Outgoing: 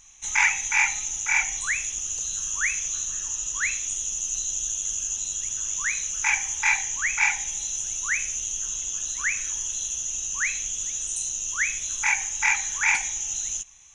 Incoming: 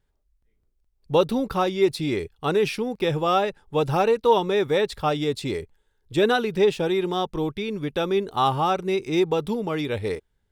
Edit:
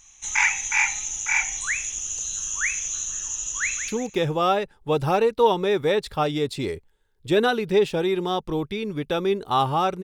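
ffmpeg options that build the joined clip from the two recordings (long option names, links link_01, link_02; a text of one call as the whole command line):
ffmpeg -i cue0.wav -i cue1.wav -filter_complex "[0:a]apad=whole_dur=10.03,atrim=end=10.03,atrim=end=3.882[link_01];[1:a]atrim=start=2.738:end=8.89[link_02];[link_01][link_02]acrossfade=duration=0.004:curve1=hsin:curve2=hsin,asplit=2[link_03][link_04];[link_04]afade=type=in:start_time=3.58:duration=0.01,afade=type=out:start_time=3.88:duration=0.01,aecho=0:1:180|360|540:0.316228|0.0790569|0.0197642[link_05];[link_03][link_05]amix=inputs=2:normalize=0" out.wav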